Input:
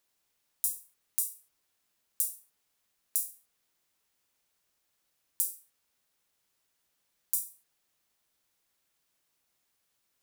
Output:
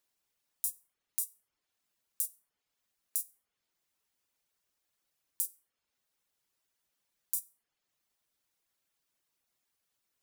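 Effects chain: reverb removal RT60 0.61 s; gain -3.5 dB

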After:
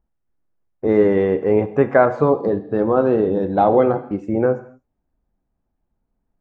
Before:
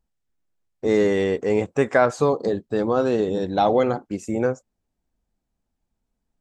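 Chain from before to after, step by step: LPF 1500 Hz 12 dB/oct; non-linear reverb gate 0.27 s falling, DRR 10 dB; gain +4 dB

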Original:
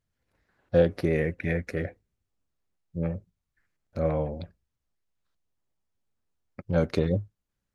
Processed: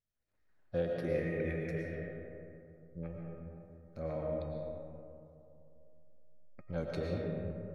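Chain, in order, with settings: resonator 620 Hz, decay 0.49 s, mix 80%; digital reverb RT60 2.8 s, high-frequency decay 0.35×, pre-delay 75 ms, DRR -1 dB

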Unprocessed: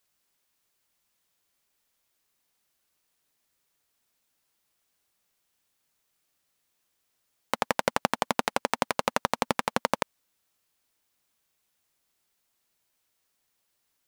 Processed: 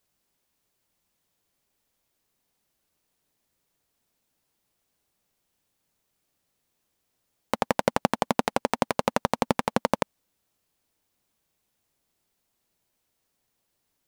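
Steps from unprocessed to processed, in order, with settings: EQ curve 200 Hz 0 dB, 810 Hz -4 dB, 1300 Hz -8 dB; gain +6.5 dB

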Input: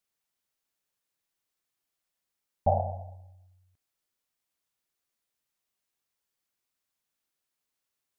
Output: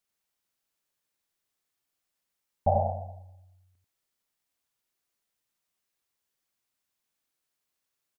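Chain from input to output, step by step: echo 90 ms -4 dB

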